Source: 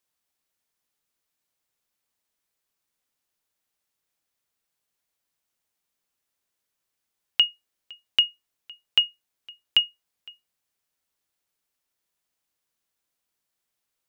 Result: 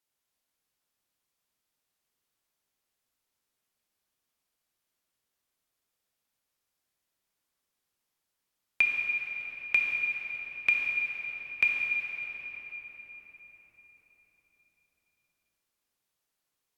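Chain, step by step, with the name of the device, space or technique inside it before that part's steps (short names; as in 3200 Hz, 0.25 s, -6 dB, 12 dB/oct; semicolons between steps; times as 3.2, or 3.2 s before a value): slowed and reverbed (varispeed -16%; reverb RT60 5.0 s, pre-delay 6 ms, DRR -2 dB); gain -5 dB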